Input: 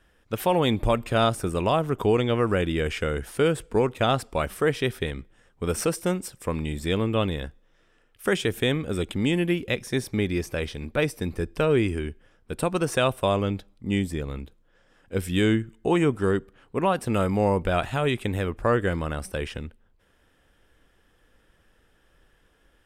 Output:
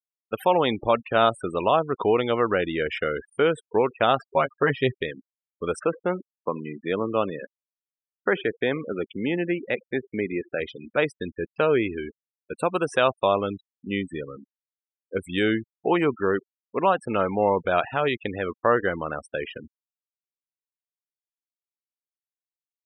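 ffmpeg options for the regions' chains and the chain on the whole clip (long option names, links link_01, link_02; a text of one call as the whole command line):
ffmpeg -i in.wav -filter_complex "[0:a]asettb=1/sr,asplit=3[link_01][link_02][link_03];[link_01]atrim=end=4.194[link_04];[link_02]atrim=start=4.19:end=4.94,asetpts=PTS-STARTPTS,afade=type=in:duration=0.004:curve=qsin,afade=type=out:start_time=0.746:duration=0.004:curve=qsin,lowpass=frequency=3100:poles=1,asubboost=boost=5.5:cutoff=230,aecho=1:1:7.4:0.81,atrim=end_sample=33075[link_05];[link_03]atrim=start=4.936[link_06];[link_04][link_05]acrossfade=duration=0.004:curve1=hsin:curve2=qsin[link_07];[link_07][link_06]acrossfade=duration=0.004:curve1=qsin:curve2=hsin,asettb=1/sr,asplit=3[link_08][link_09][link_10];[link_08]atrim=end=5.794[link_11];[link_09]atrim=start=5.79:end=10.6,asetpts=PTS-STARTPTS,afade=type=in:duration=0.004:curve=qsin,afade=type=out:start_time=4.806:duration=0.004:curve=qsin,highpass=110,lowpass=2400,aecho=1:1:78:0.075,atrim=end_sample=212121[link_12];[link_10]atrim=start=10.596[link_13];[link_11][link_12]acrossfade=duration=0.004:curve1=hsin:curve2=qsin[link_14];[link_14][link_13]acrossfade=duration=0.004:curve1=qsin:curve2=hsin,highpass=frequency=730:poles=1,afftfilt=real='re*gte(hypot(re,im),0.0224)':imag='im*gte(hypot(re,im),0.0224)':win_size=1024:overlap=0.75,lowpass=frequency=1700:poles=1,volume=7dB" out.wav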